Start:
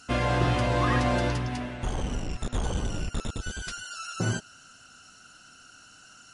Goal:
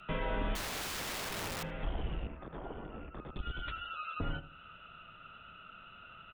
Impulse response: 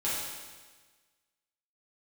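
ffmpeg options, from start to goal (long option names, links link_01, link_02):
-filter_complex "[0:a]aresample=8000,aresample=44100,acompressor=threshold=-41dB:ratio=2,asettb=1/sr,asplit=3[link_01][link_02][link_03];[link_01]atrim=end=0.554[link_04];[link_02]atrim=start=0.55:end=1.63,asetpts=PTS-STARTPTS,afade=type=in:duration=0.004:curve=qsin,afade=type=out:start_time=1.076:duration=0.004:curve=qsin,aeval=exprs='(mod(59.6*val(0)+1,2)-1)/59.6':channel_layout=same[link_05];[link_03]atrim=start=1.626[link_06];[link_04][link_05]acrossfade=duration=0.004:curve1=hsin:curve2=qsin[link_07];[link_07][link_06]acrossfade=duration=0.004:curve1=qsin:curve2=hsin,afreqshift=-84,asettb=1/sr,asplit=3[link_08][link_09][link_10];[link_08]atrim=end=2.274[link_11];[link_09]atrim=start=2.27:end=3.36,asetpts=PTS-STARTPTS,afade=type=in:duration=0.004:curve=qsin,afade=type=out:start_time=1.086:duration=0.004:curve=qsin,acrossover=split=170 2100:gain=0.224 1 0.0708[link_12][link_13][link_14];[link_12][link_13][link_14]amix=inputs=3:normalize=0[link_15];[link_10]atrim=start=3.356[link_16];[link_11][link_15]acrossfade=duration=0.004:curve1=hsin:curve2=qsin[link_17];[link_17][link_16]acrossfade=duration=0.004:curve1=qsin:curve2=hsin,asplit=2[link_18][link_19];[link_19]adelay=77,lowpass=frequency=1100:poles=1,volume=-12dB,asplit=2[link_20][link_21];[link_21]adelay=77,lowpass=frequency=1100:poles=1,volume=0.39,asplit=2[link_22][link_23];[link_23]adelay=77,lowpass=frequency=1100:poles=1,volume=0.39,asplit=2[link_24][link_25];[link_25]adelay=77,lowpass=frequency=1100:poles=1,volume=0.39[link_26];[link_18][link_20][link_22][link_24][link_26]amix=inputs=5:normalize=0,volume=1dB"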